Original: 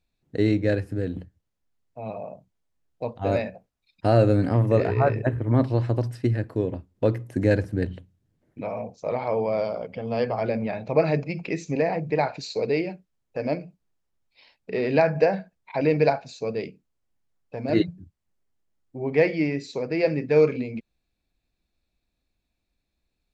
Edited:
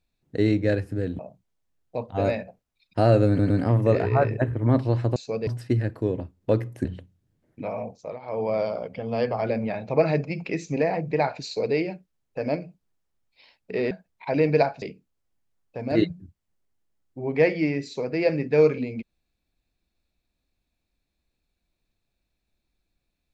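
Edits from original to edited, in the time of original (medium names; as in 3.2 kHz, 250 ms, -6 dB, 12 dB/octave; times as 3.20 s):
1.19–2.26 s: delete
4.35 s: stutter 0.11 s, 3 plays
7.39–7.84 s: delete
8.90–9.48 s: dip -14.5 dB, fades 0.28 s
14.90–15.38 s: delete
16.29–16.60 s: move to 6.01 s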